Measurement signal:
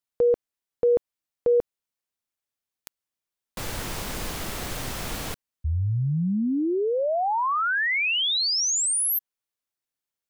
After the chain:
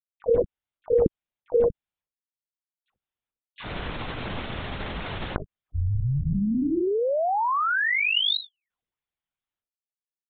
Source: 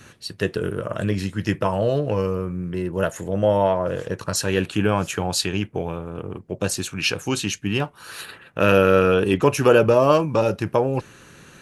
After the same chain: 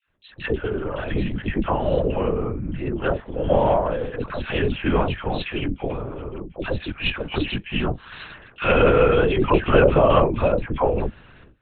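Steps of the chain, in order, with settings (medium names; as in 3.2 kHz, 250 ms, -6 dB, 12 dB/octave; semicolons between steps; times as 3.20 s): gate with hold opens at -34 dBFS, closes at -39 dBFS, hold 375 ms, range -24 dB; phase dispersion lows, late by 99 ms, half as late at 910 Hz; LPC vocoder at 8 kHz whisper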